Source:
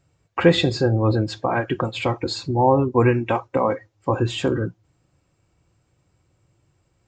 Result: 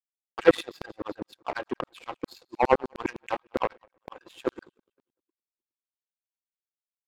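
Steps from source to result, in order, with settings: two-band feedback delay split 340 Hz, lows 267 ms, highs 178 ms, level -16 dB; LFO high-pass saw down 9.8 Hz 250–3800 Hz; power-law waveshaper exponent 2; trim -1 dB

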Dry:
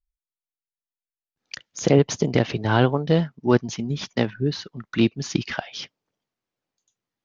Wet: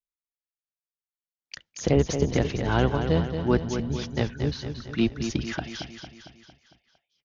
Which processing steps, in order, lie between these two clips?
octave divider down 1 oct, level -4 dB; gate with hold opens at -42 dBFS; on a send: feedback delay 227 ms, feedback 54%, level -8 dB; on the sum: trim -5 dB

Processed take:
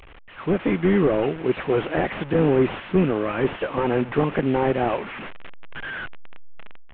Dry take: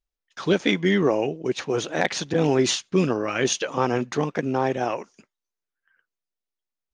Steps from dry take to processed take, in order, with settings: one-bit delta coder 16 kbps, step -33 dBFS; level rider gain up to 14.5 dB; trim -6.5 dB

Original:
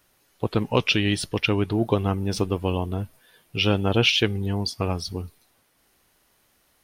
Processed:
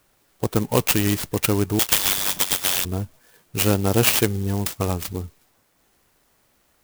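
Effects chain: 1.79–2.85 s: frequency inversion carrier 3.6 kHz; sampling jitter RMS 0.076 ms; trim +2 dB

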